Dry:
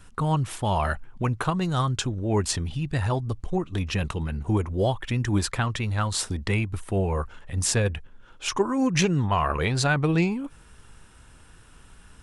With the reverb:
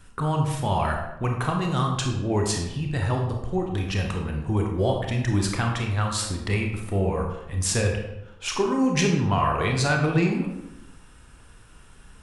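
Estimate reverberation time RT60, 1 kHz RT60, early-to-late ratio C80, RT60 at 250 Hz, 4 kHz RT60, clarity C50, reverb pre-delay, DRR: 0.90 s, 0.85 s, 7.0 dB, 1.0 s, 0.60 s, 4.0 dB, 25 ms, 1.0 dB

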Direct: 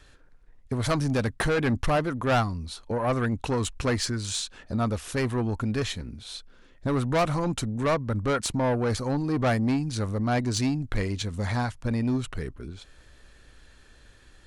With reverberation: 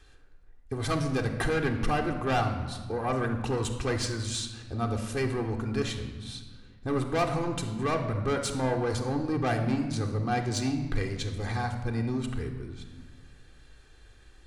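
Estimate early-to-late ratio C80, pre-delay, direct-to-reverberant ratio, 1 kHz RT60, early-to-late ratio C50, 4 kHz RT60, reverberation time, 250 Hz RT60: 9.5 dB, 3 ms, 1.0 dB, 1.4 s, 8.0 dB, 0.95 s, 1.4 s, 2.1 s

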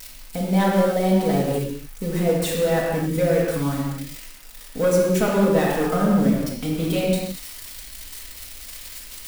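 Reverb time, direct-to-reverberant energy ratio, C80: non-exponential decay, −5.5 dB, 1.5 dB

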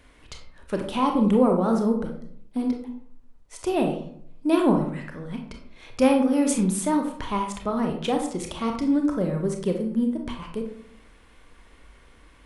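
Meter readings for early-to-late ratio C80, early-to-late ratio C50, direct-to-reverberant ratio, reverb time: 10.5 dB, 6.0 dB, 2.5 dB, 0.65 s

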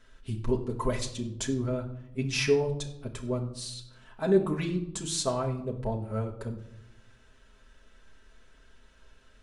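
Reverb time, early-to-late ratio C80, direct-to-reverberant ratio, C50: 0.80 s, 13.5 dB, −1.0 dB, 10.5 dB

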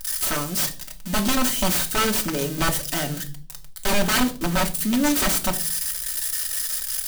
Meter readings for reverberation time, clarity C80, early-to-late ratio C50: 0.40 s, 20.0 dB, 15.5 dB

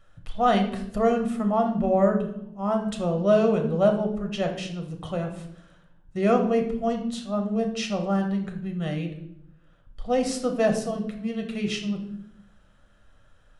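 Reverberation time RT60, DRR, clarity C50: 0.75 s, 3.5 dB, 8.5 dB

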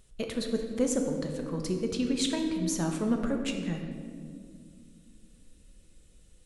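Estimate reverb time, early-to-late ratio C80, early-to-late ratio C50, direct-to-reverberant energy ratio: 2.1 s, 6.5 dB, 5.0 dB, 3.0 dB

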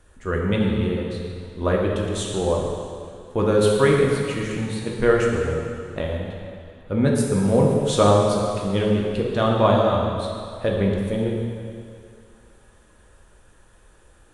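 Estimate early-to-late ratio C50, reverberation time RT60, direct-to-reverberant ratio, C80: 1.0 dB, 2.4 s, −2.0 dB, 2.0 dB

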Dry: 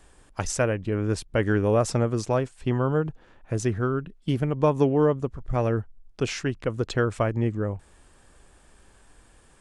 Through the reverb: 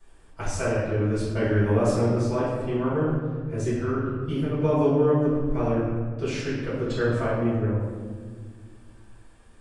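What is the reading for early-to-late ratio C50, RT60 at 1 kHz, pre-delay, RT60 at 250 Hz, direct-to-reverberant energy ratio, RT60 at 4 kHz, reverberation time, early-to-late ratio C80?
−1.0 dB, 1.4 s, 3 ms, 2.7 s, −13.5 dB, 0.95 s, 1.6 s, 1.5 dB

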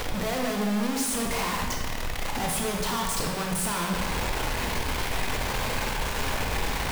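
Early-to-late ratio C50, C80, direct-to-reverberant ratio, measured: 2.0 dB, 4.5 dB, 0.0 dB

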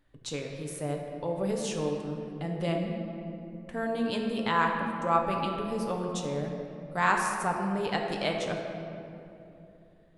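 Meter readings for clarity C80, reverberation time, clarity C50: 4.0 dB, 2.9 s, 3.0 dB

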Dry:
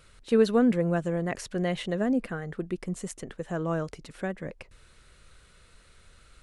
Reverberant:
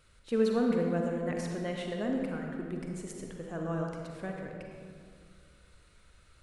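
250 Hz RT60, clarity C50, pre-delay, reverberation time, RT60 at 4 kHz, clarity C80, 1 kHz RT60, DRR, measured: 2.6 s, 1.5 dB, 39 ms, 2.2 s, 1.3 s, 3.0 dB, 2.0 s, 0.5 dB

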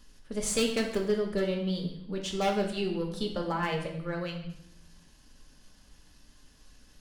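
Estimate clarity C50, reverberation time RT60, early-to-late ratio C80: 6.0 dB, 0.70 s, 9.5 dB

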